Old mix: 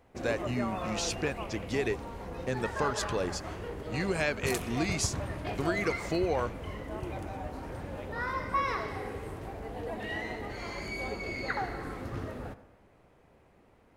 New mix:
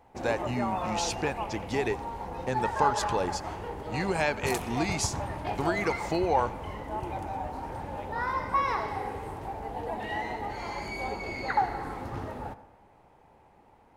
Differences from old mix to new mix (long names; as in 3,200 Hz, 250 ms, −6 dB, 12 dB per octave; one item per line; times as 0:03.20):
speech: send +8.0 dB
master: add parametric band 860 Hz +14 dB 0.35 octaves